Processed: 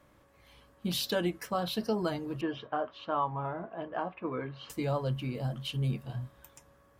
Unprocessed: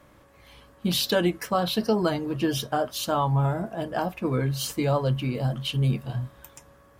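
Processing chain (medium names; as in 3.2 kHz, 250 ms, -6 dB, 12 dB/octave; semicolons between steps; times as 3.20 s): 2.41–4.70 s: cabinet simulation 110–2900 Hz, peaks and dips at 130 Hz -9 dB, 210 Hz -8 dB, 1.1 kHz +6 dB; trim -7.5 dB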